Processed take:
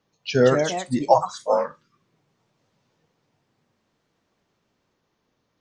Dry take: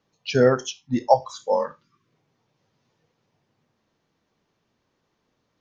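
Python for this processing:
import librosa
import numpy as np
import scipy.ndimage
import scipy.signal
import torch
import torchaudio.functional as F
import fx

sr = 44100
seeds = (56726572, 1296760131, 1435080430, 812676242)

y = fx.echo_pitch(x, sr, ms=222, semitones=3, count=2, db_per_echo=-6.0)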